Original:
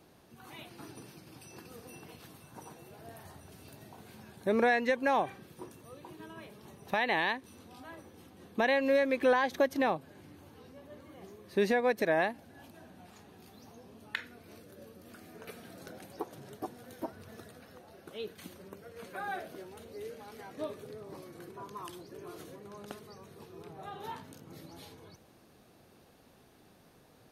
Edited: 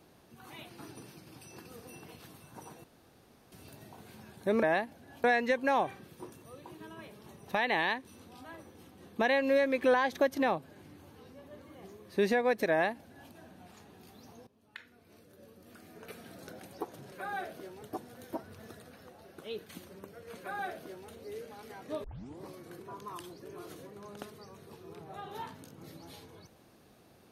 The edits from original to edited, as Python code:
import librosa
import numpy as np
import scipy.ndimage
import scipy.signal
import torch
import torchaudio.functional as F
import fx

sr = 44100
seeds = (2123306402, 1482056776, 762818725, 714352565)

y = fx.edit(x, sr, fx.room_tone_fill(start_s=2.84, length_s=0.68),
    fx.duplicate(start_s=12.1, length_s=0.61, to_s=4.63),
    fx.fade_in_from(start_s=13.86, length_s=1.78, floor_db=-18.0),
    fx.duplicate(start_s=19.07, length_s=0.7, to_s=16.51),
    fx.tape_start(start_s=20.73, length_s=0.38), tone=tone)